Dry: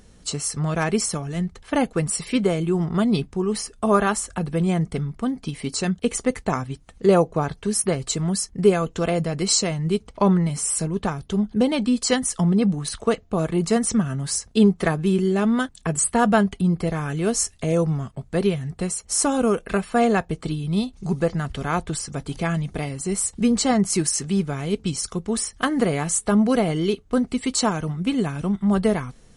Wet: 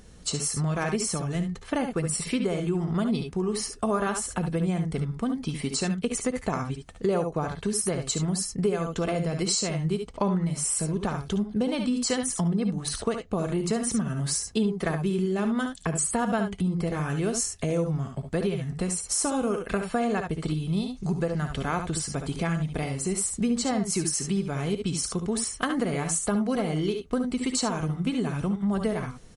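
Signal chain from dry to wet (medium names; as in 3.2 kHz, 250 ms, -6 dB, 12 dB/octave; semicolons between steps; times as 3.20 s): early reflections 59 ms -12.5 dB, 71 ms -8.5 dB; compression 3:1, threshold -25 dBFS, peak gain reduction 11.5 dB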